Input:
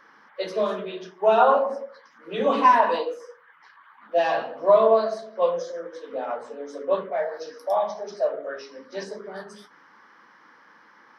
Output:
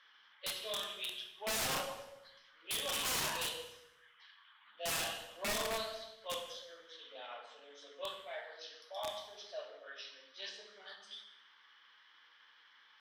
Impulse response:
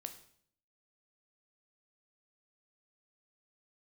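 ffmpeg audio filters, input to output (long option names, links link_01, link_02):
-filter_complex "[0:a]atempo=0.86,bandpass=frequency=3300:width_type=q:width=5.7:csg=0,aeval=exprs='(mod(84.1*val(0)+1,2)-1)/84.1':channel_layout=same[link_01];[1:a]atrim=start_sample=2205,asetrate=29547,aresample=44100[link_02];[link_01][link_02]afir=irnorm=-1:irlink=0,volume=10dB"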